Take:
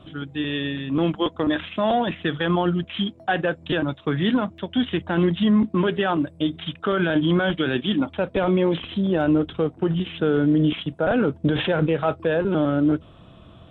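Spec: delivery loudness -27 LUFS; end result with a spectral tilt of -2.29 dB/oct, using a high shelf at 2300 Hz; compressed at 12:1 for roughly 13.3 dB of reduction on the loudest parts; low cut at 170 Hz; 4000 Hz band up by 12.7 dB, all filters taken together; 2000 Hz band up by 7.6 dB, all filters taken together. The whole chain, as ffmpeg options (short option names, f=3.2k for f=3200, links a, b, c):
-af "highpass=170,equalizer=f=2k:t=o:g=4.5,highshelf=f=2.3k:g=8.5,equalizer=f=4k:t=o:g=7.5,acompressor=threshold=-26dB:ratio=12,volume=2.5dB"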